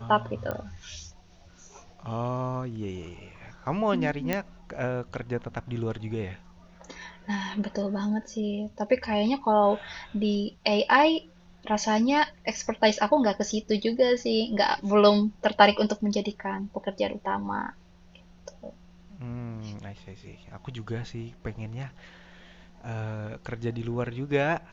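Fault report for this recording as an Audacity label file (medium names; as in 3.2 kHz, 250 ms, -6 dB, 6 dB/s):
0.510000	0.510000	pop -19 dBFS
4.330000	4.330000	pop -12 dBFS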